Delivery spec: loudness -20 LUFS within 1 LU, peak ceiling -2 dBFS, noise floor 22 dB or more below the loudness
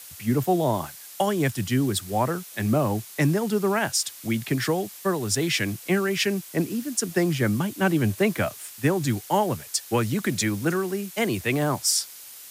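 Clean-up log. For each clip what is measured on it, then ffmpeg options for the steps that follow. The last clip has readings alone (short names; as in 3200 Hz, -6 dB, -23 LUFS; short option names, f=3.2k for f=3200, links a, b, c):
noise floor -43 dBFS; noise floor target -47 dBFS; loudness -25.0 LUFS; peak -9.5 dBFS; loudness target -20.0 LUFS
-> -af "afftdn=nr=6:nf=-43"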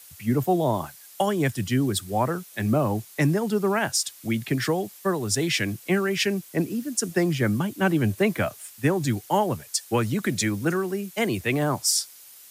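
noise floor -48 dBFS; loudness -25.0 LUFS; peak -9.5 dBFS; loudness target -20.0 LUFS
-> -af "volume=5dB"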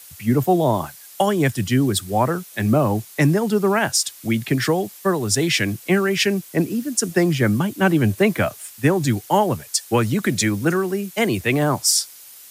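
loudness -20.0 LUFS; peak -4.5 dBFS; noise floor -43 dBFS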